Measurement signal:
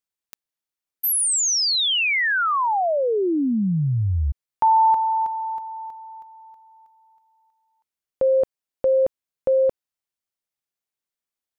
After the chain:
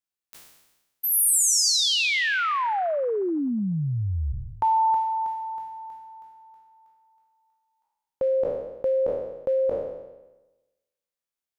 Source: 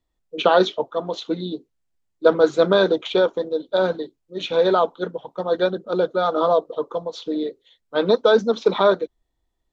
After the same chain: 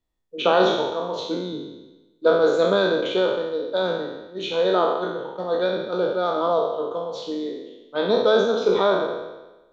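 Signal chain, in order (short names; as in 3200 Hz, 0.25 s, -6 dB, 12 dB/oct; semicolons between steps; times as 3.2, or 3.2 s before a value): spectral trails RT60 1.09 s; gain -5 dB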